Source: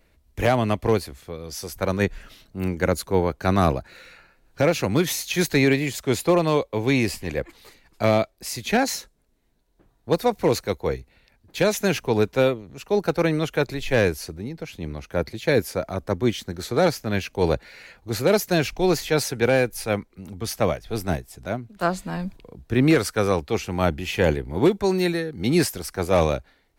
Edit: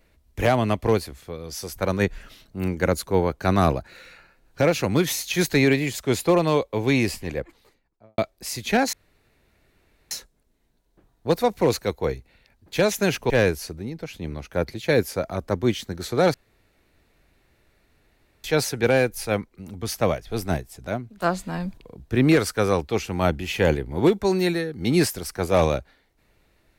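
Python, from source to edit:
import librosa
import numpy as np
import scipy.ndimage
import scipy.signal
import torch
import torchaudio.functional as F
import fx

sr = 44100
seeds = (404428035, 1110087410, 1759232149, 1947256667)

y = fx.studio_fade_out(x, sr, start_s=7.05, length_s=1.13)
y = fx.edit(y, sr, fx.insert_room_tone(at_s=8.93, length_s=1.18),
    fx.cut(start_s=12.12, length_s=1.77),
    fx.room_tone_fill(start_s=16.93, length_s=2.1), tone=tone)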